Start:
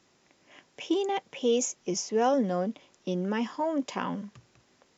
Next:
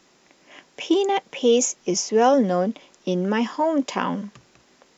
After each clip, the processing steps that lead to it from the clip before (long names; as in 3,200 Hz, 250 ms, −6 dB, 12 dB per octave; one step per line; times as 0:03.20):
parametric band 100 Hz −15 dB 0.56 octaves
level +8 dB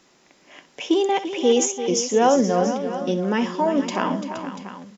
multi-tap delay 63/341/471/688 ms −13.5/−11/−12/−13.5 dB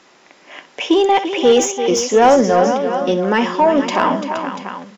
mid-hump overdrive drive 13 dB, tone 2,300 Hz, clips at −5.5 dBFS
level +4.5 dB